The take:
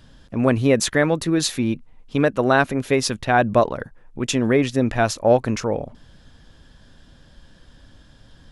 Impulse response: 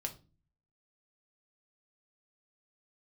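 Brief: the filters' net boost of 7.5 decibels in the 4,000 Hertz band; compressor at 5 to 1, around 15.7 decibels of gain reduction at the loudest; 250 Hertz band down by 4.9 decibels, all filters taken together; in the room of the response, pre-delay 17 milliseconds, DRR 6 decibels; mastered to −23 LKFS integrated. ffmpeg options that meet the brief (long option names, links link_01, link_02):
-filter_complex "[0:a]equalizer=frequency=250:width_type=o:gain=-6,equalizer=frequency=4000:width_type=o:gain=9,acompressor=threshold=-30dB:ratio=5,asplit=2[link_01][link_02];[1:a]atrim=start_sample=2205,adelay=17[link_03];[link_02][link_03]afir=irnorm=-1:irlink=0,volume=-5.5dB[link_04];[link_01][link_04]amix=inputs=2:normalize=0,volume=9dB"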